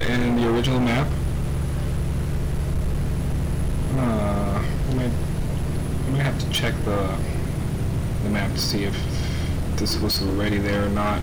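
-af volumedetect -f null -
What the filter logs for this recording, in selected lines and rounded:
mean_volume: -22.2 dB
max_volume: -17.5 dB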